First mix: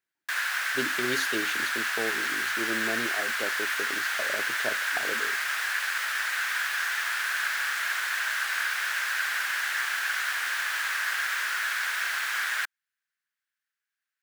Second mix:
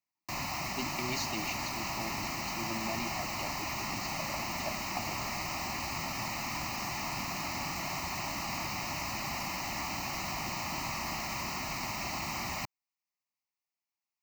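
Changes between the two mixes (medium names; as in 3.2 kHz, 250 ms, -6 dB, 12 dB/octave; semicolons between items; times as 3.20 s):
background: remove resonant high-pass 1.6 kHz, resonance Q 5.2; master: add static phaser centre 2.3 kHz, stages 8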